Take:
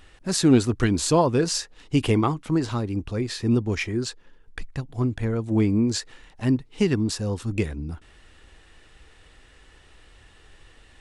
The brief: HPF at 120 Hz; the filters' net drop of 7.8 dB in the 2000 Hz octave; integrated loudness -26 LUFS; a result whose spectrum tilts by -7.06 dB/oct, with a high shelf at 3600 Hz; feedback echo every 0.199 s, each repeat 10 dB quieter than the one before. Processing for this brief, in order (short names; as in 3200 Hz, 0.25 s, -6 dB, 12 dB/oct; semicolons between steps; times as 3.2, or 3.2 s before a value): HPF 120 Hz; bell 2000 Hz -8.5 dB; high shelf 3600 Hz -5.5 dB; feedback echo 0.199 s, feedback 32%, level -10 dB; gain -1 dB